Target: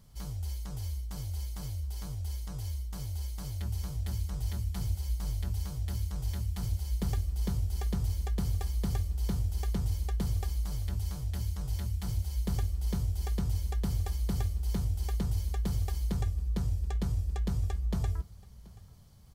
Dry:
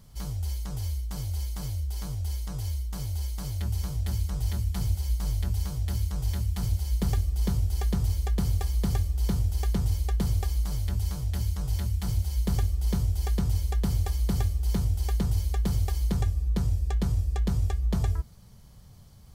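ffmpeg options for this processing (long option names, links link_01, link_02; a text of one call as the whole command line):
ffmpeg -i in.wav -af "aecho=1:1:730:0.075,volume=-5dB" out.wav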